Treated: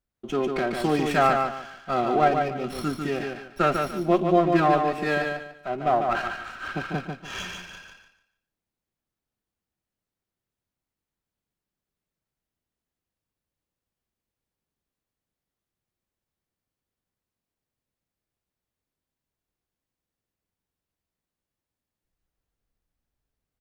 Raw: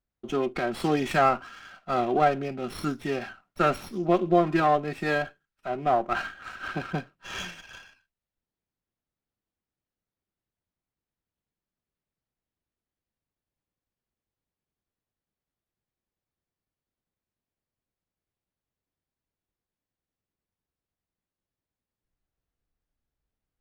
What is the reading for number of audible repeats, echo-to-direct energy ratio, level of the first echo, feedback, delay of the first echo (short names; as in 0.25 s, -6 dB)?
3, -4.5 dB, -5.0 dB, 27%, 0.146 s